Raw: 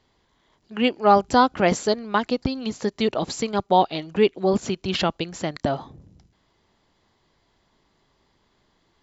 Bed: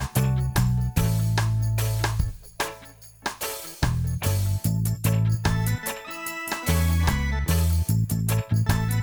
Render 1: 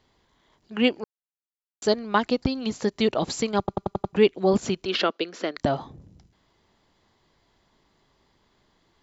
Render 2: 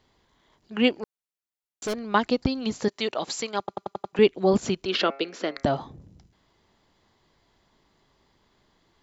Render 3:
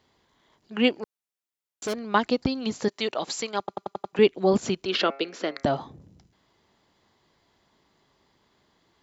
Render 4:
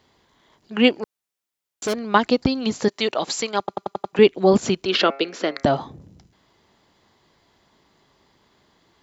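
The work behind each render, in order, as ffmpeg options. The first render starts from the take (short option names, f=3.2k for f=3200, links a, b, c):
-filter_complex "[0:a]asettb=1/sr,asplit=3[a][b][c];[a]atrim=end=4.854[d];[b]atrim=start=4.85:end=5.57,asetpts=PTS-STARTPTS,afade=t=in:d=0.004:c=qsin,afade=t=out:st=0.716:d=0.004:c=qsin,highpass=f=260:w=0.5412,highpass=f=260:w=1.3066,equalizer=f=440:t=q:w=4:g=5,equalizer=f=830:t=q:w=4:g=-8,equalizer=f=1.4k:t=q:w=4:g=4,lowpass=f=5.5k:w=0.5412,lowpass=f=5.5k:w=1.3066[e];[c]atrim=start=5.566[f];[d][e]acrossfade=d=0.004:c1=hsin:c2=qsin[g];[g][f]acrossfade=d=0.004:c1=qsin:c2=hsin,asplit=9[h][i][j][k][l][m][n][o][p];[h]atrim=end=1.04,asetpts=PTS-STARTPTS,afade=t=out:st=1.036:d=0.004:c=hsin[q];[i]atrim=start=1.04:end=1.82,asetpts=PTS-STARTPTS,volume=0[r];[j]atrim=start=1.82:end=3.682,asetpts=PTS-STARTPTS,afade=t=in:d=0.004:c=hsin[s];[k]atrim=start=3.588:end=3.682[t];[l]atrim=start=3.588:end=3.682[u];[m]atrim=start=3.588:end=3.682[v];[n]atrim=start=3.588:end=3.682[w];[o]atrim=start=3.588:end=3.682[x];[p]atrim=start=4.128[y];[q][r][s]concat=n=3:v=0:a=1[z];[z][t]acrossfade=d=0.004:c1=hsin:c2=hsin[aa];[aa][u]acrossfade=d=0.004:c1=hsin:c2=hsin[ab];[ab][v]acrossfade=d=0.004:c1=hsin:c2=hsin[ac];[ac][w]acrossfade=d=0.004:c1=hsin:c2=hsin[ad];[ad][x]acrossfade=d=0.004:c1=hsin:c2=hsin[ae];[ae][y]acrossfade=d=0.004:c1=hsin:c2=hsin"
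-filter_complex "[0:a]asettb=1/sr,asplit=3[a][b][c];[a]atrim=end=0.904[d];[b]atrim=start=0.9:end=1.99,asetpts=PTS-STARTPTS,afade=t=in:d=0.004:c=qsin,afade=t=out:st=1.086:d=0.004:c=qsin,asoftclip=type=hard:threshold=-25.5dB[e];[c]atrim=start=1.986[f];[d][e]acrossfade=d=0.004:c1=hsin:c2=qsin[g];[g][f]acrossfade=d=0.004:c1=qsin:c2=hsin,asettb=1/sr,asplit=3[h][i][j];[h]atrim=end=2.884[k];[i]atrim=start=2.88:end=4.19,asetpts=PTS-STARTPTS,afade=t=in:d=0.004:c=qsin,afade=t=out:st=1.306:d=0.004:c=qsin,highpass=f=730:p=1[l];[j]atrim=start=4.186[m];[k][l]acrossfade=d=0.004:c1=hsin:c2=qsin[n];[n][m]acrossfade=d=0.004:c1=qsin:c2=hsin,asettb=1/sr,asplit=3[o][p][q];[o]atrim=end=4.914[r];[p]atrim=start=4.91:end=5.67,asetpts=PTS-STARTPTS,afade=t=in:d=0.004:c=qsin,afade=t=out:st=0.756:d=0.004:c=qsin,bandreject=f=136.9:t=h:w=4,bandreject=f=273.8:t=h:w=4,bandreject=f=410.7:t=h:w=4,bandreject=f=547.6:t=h:w=4,bandreject=f=684.5:t=h:w=4,bandreject=f=821.4:t=h:w=4,bandreject=f=958.3:t=h:w=4,bandreject=f=1.0952k:t=h:w=4,bandreject=f=1.2321k:t=h:w=4,bandreject=f=1.369k:t=h:w=4,bandreject=f=1.5059k:t=h:w=4,bandreject=f=1.6428k:t=h:w=4,bandreject=f=1.7797k:t=h:w=4,bandreject=f=1.9166k:t=h:w=4,bandreject=f=2.0535k:t=h:w=4,bandreject=f=2.1904k:t=h:w=4,bandreject=f=2.3273k:t=h:w=4,bandreject=f=2.4642k:t=h:w=4,bandreject=f=2.6011k:t=h:w=4,bandreject=f=2.738k:t=h:w=4[s];[q]atrim=start=5.666[t];[r][s]acrossfade=d=0.004:c1=hsin:c2=qsin[u];[u][t]acrossfade=d=0.004:c1=qsin:c2=hsin"
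-af "highpass=f=97:p=1"
-af "volume=5.5dB,alimiter=limit=-3dB:level=0:latency=1"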